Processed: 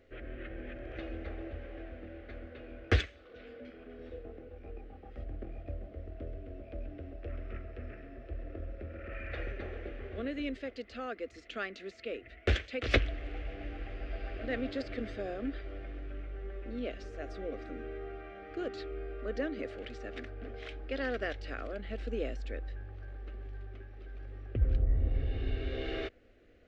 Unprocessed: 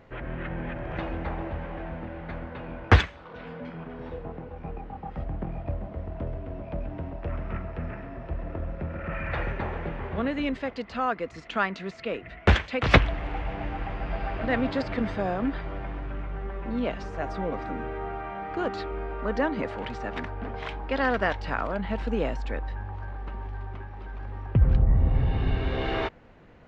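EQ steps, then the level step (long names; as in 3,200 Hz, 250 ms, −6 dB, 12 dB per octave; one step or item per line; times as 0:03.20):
phaser with its sweep stopped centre 390 Hz, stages 4
−6.0 dB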